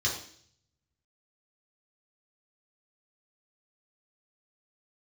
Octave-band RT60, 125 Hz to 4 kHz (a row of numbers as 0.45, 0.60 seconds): 1.1, 0.70, 0.60, 0.55, 0.55, 0.70 seconds